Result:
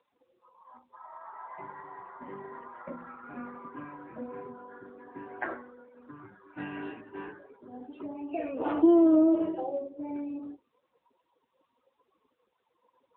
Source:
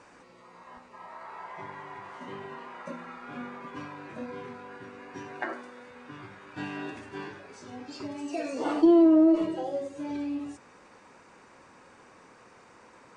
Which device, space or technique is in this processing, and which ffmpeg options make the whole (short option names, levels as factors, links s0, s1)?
mobile call with aggressive noise cancelling: -af "highpass=f=150:p=1,afftdn=nr=33:nf=-43" -ar 8000 -c:a libopencore_amrnb -b:a 10200